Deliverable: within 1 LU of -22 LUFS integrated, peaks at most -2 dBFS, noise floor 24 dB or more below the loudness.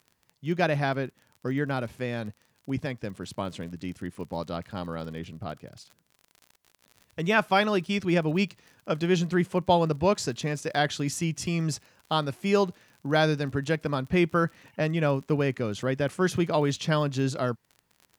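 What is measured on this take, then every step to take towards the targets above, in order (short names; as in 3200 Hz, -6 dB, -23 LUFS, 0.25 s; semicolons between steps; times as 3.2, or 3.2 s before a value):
ticks 42/s; loudness -28.0 LUFS; peak -9.5 dBFS; loudness target -22.0 LUFS
-> de-click; gain +6 dB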